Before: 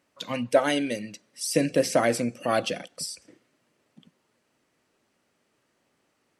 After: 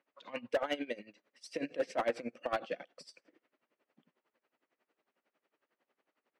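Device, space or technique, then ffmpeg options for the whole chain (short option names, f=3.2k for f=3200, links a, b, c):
helicopter radio: -af "highpass=350,lowpass=2.8k,aeval=exprs='val(0)*pow(10,-19*(0.5-0.5*cos(2*PI*11*n/s))/20)':c=same,asoftclip=type=hard:threshold=-22.5dB,volume=-2.5dB"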